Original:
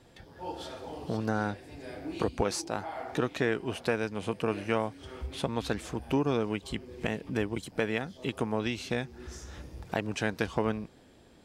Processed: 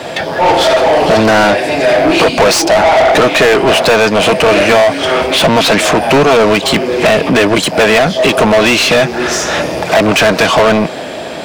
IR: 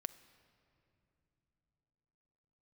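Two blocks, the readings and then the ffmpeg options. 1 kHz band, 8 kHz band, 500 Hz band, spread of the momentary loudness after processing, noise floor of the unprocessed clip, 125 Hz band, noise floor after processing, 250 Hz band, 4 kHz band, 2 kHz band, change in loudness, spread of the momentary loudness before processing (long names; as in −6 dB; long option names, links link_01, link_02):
+26.0 dB, +25.5 dB, +24.5 dB, 5 LU, −57 dBFS, +16.0 dB, −22 dBFS, +19.5 dB, +28.5 dB, +25.5 dB, +23.5 dB, 12 LU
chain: -filter_complex "[0:a]acrossover=split=120[link_01][link_02];[link_01]acompressor=threshold=-54dB:ratio=6[link_03];[link_03][link_02]amix=inputs=2:normalize=0,equalizer=frequency=160:width_type=o:width=0.33:gain=6,equalizer=frequency=630:width_type=o:width=0.33:gain=11,equalizer=frequency=2500:width_type=o:width=0.33:gain=3,asplit=2[link_04][link_05];[link_05]highpass=frequency=720:poles=1,volume=37dB,asoftclip=type=tanh:threshold=-8dB[link_06];[link_04][link_06]amix=inputs=2:normalize=0,lowpass=frequency=4000:poles=1,volume=-6dB,acrusher=bits=10:mix=0:aa=0.000001,volume=8dB"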